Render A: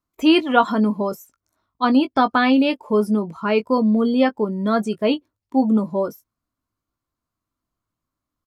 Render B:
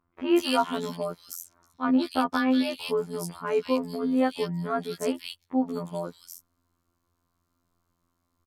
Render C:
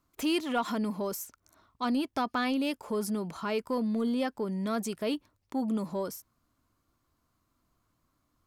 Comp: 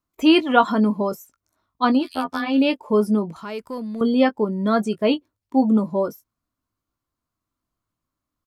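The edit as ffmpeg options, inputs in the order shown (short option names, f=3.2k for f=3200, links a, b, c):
-filter_complex "[0:a]asplit=3[a][b][c];[a]atrim=end=2.14[d];[1:a]atrim=start=1.9:end=2.62[e];[b]atrim=start=2.38:end=3.362[f];[2:a]atrim=start=3.358:end=4.012[g];[c]atrim=start=4.008[h];[d][e]acrossfade=d=0.24:c1=tri:c2=tri[i];[i][f]acrossfade=d=0.24:c1=tri:c2=tri[j];[j][g]acrossfade=d=0.004:c1=hsin:c2=hsin[k];[k][h]acrossfade=d=0.004:c1=hsin:c2=hsin"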